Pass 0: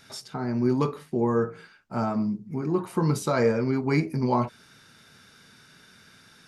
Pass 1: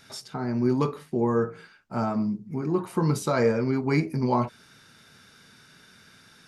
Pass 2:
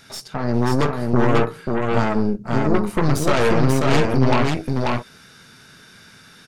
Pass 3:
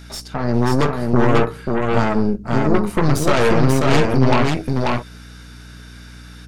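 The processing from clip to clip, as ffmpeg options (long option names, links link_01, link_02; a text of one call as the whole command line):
ffmpeg -i in.wav -af anull out.wav
ffmpeg -i in.wav -af "aeval=exprs='0.299*(cos(1*acos(clip(val(0)/0.299,-1,1)))-cos(1*PI/2))+0.0531*(cos(5*acos(clip(val(0)/0.299,-1,1)))-cos(5*PI/2))+0.0944*(cos(8*acos(clip(val(0)/0.299,-1,1)))-cos(8*PI/2))':channel_layout=same,aecho=1:1:539:0.708" out.wav
ffmpeg -i in.wav -af "aeval=exprs='val(0)+0.01*(sin(2*PI*60*n/s)+sin(2*PI*2*60*n/s)/2+sin(2*PI*3*60*n/s)/3+sin(2*PI*4*60*n/s)/4+sin(2*PI*5*60*n/s)/5)':channel_layout=same,volume=2dB" out.wav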